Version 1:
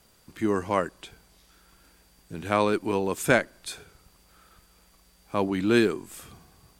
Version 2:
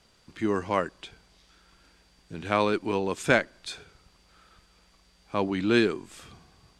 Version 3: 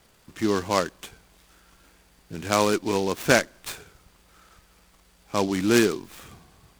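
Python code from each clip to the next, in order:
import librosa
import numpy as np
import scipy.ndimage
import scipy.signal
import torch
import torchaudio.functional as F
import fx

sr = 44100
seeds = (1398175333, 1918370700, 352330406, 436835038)

y1 = scipy.signal.sosfilt(scipy.signal.butter(2, 4500.0, 'lowpass', fs=sr, output='sos'), x)
y1 = fx.high_shelf(y1, sr, hz=3500.0, db=8.5)
y1 = F.gain(torch.from_numpy(y1), -1.5).numpy()
y2 = fx.noise_mod_delay(y1, sr, seeds[0], noise_hz=4100.0, depth_ms=0.048)
y2 = F.gain(torch.from_numpy(y2), 3.0).numpy()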